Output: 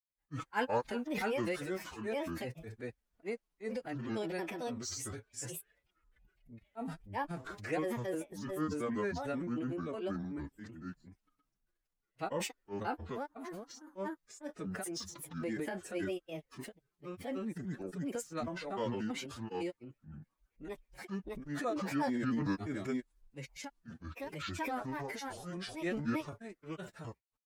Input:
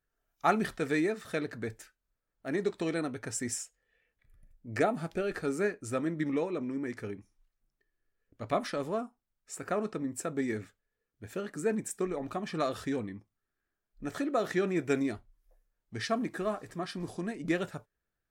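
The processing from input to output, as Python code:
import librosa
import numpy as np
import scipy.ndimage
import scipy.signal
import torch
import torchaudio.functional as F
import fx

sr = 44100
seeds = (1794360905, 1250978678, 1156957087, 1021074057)

y = fx.granulator(x, sr, seeds[0], grain_ms=100.0, per_s=20.0, spray_ms=388.0, spread_st=7)
y = fx.stretch_vocoder(y, sr, factor=1.5)
y = fx.transient(y, sr, attack_db=-3, sustain_db=7)
y = y * librosa.db_to_amplitude(-4.0)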